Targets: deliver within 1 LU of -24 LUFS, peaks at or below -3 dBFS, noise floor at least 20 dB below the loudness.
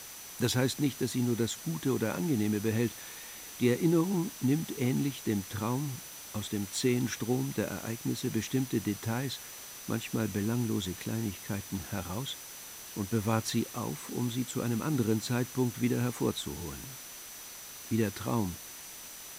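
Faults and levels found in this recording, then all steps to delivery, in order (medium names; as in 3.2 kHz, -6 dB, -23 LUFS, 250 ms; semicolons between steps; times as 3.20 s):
steady tone 6 kHz; tone level -50 dBFS; noise floor -46 dBFS; noise floor target -53 dBFS; loudness -32.5 LUFS; peak level -14.5 dBFS; loudness target -24.0 LUFS
-> band-stop 6 kHz, Q 30; noise print and reduce 7 dB; trim +8.5 dB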